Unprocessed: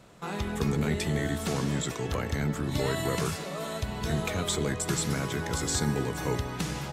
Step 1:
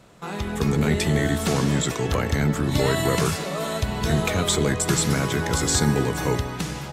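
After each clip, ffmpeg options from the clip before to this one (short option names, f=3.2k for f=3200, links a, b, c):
-af "dynaudnorm=f=100:g=13:m=5dB,volume=2.5dB"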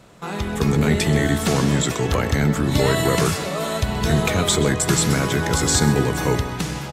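-filter_complex "[0:a]asplit=2[a][b];[b]adelay=128.3,volume=-15dB,highshelf=f=4k:g=-2.89[c];[a][c]amix=inputs=2:normalize=0,volume=3dB"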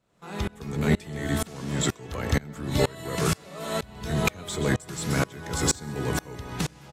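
-af "asoftclip=type=tanh:threshold=-7.5dB,aeval=exprs='val(0)*pow(10,-27*if(lt(mod(-2.1*n/s,1),2*abs(-2.1)/1000),1-mod(-2.1*n/s,1)/(2*abs(-2.1)/1000),(mod(-2.1*n/s,1)-2*abs(-2.1)/1000)/(1-2*abs(-2.1)/1000))/20)':c=same"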